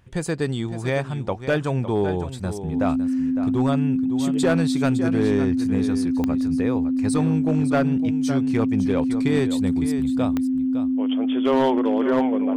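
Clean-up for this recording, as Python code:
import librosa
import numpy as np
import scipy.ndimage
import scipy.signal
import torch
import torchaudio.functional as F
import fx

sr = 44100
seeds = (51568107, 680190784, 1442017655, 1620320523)

y = fx.fix_declip(x, sr, threshold_db=-13.0)
y = fx.fix_declick_ar(y, sr, threshold=10.0)
y = fx.notch(y, sr, hz=260.0, q=30.0)
y = fx.fix_echo_inverse(y, sr, delay_ms=558, level_db=-11.0)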